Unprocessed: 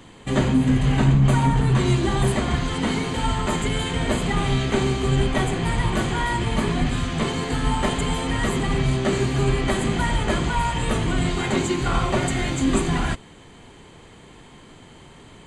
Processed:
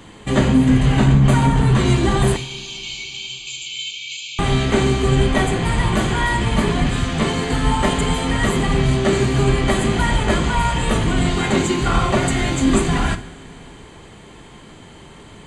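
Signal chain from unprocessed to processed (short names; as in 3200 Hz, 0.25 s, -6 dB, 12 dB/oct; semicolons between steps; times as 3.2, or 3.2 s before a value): 2.36–4.39 brick-wall FIR band-pass 2200–7600 Hz; two-slope reverb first 0.46 s, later 3.9 s, from -18 dB, DRR 9.5 dB; gain +4 dB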